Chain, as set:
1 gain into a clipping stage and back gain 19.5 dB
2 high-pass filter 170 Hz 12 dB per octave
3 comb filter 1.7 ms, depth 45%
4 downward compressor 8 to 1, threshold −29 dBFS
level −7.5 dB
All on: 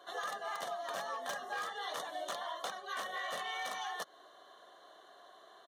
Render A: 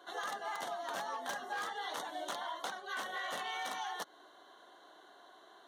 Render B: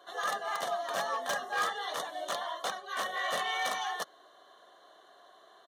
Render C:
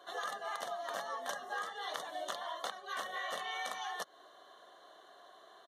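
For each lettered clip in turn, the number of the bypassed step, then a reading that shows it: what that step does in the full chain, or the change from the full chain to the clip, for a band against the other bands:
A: 3, 250 Hz band +4.5 dB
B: 4, average gain reduction 3.5 dB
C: 1, distortion level −12 dB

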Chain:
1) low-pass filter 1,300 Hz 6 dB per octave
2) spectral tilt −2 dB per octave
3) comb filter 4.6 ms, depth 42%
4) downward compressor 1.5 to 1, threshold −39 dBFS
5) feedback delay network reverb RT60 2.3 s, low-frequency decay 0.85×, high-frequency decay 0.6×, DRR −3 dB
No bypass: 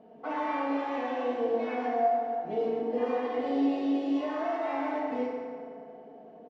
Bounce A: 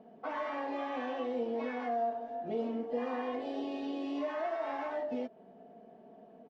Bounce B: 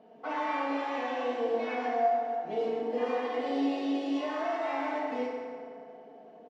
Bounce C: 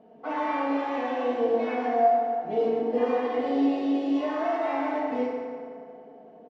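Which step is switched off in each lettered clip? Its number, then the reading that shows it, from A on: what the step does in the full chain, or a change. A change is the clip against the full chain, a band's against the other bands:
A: 5, change in momentary loudness spread +7 LU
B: 2, 4 kHz band +4.5 dB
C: 4, average gain reduction 2.5 dB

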